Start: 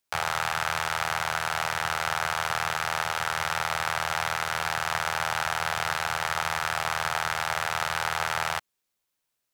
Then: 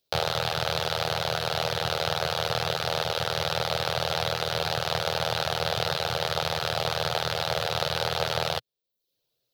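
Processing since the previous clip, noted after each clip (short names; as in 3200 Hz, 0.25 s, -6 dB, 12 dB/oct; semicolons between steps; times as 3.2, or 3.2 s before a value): reverb removal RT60 0.52 s; graphic EQ 125/250/500/1000/2000/4000/8000 Hz +8/-3/+12/-8/-9/+11/-11 dB; gain +3.5 dB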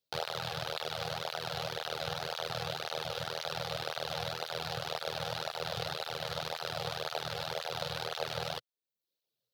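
tape flanging out of phase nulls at 1.9 Hz, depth 3.4 ms; gain -6.5 dB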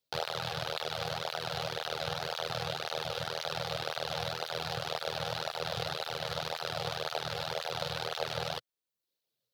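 Doppler distortion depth 0.11 ms; gain +1.5 dB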